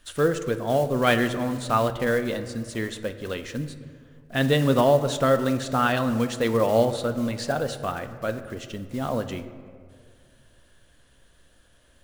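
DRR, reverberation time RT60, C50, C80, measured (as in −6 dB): 9.0 dB, 2.1 s, 11.5 dB, 13.0 dB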